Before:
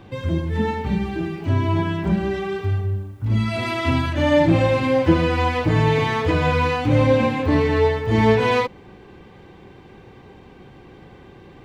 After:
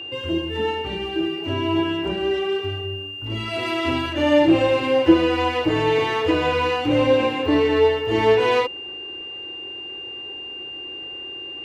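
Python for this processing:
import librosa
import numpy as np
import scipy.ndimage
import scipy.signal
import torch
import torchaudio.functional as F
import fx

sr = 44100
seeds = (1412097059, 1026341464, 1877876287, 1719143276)

y = x + 10.0 ** (-30.0 / 20.0) * np.sin(2.0 * np.pi * 2800.0 * np.arange(len(x)) / sr)
y = fx.low_shelf_res(y, sr, hz=260.0, db=-7.5, q=3.0)
y = y * 10.0 ** (-1.5 / 20.0)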